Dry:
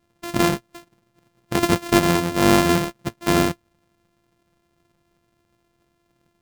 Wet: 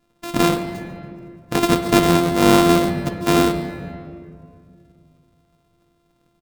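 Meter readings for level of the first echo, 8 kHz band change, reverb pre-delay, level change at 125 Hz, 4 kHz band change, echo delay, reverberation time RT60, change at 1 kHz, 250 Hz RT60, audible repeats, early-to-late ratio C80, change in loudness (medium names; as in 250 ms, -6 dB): -17.5 dB, +0.5 dB, 4 ms, +2.0 dB, +2.0 dB, 142 ms, 2.2 s, +3.0 dB, 2.8 s, 1, 8.5 dB, +2.5 dB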